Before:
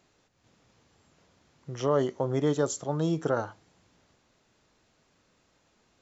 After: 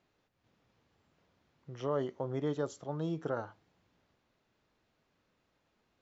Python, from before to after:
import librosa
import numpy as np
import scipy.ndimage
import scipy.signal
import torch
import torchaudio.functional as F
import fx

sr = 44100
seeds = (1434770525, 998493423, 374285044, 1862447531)

y = scipy.signal.sosfilt(scipy.signal.butter(2, 4200.0, 'lowpass', fs=sr, output='sos'), x)
y = y * 10.0 ** (-8.0 / 20.0)